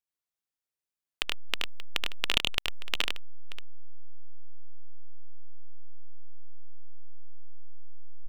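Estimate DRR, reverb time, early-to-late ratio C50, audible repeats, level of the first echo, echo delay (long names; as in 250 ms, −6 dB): no reverb audible, no reverb audible, no reverb audible, 2, −3.5 dB, 76 ms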